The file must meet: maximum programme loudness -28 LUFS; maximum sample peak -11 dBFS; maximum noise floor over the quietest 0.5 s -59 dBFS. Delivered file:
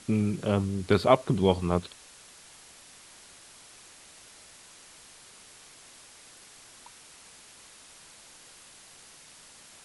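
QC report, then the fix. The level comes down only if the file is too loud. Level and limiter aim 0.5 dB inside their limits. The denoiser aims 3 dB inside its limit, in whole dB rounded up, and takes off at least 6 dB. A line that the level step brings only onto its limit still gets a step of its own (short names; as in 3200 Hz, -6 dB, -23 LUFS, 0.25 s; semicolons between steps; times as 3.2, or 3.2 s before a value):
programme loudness -26.0 LUFS: fail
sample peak -5.5 dBFS: fail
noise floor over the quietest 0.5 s -52 dBFS: fail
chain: denoiser 8 dB, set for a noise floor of -52 dBFS; gain -2.5 dB; limiter -11.5 dBFS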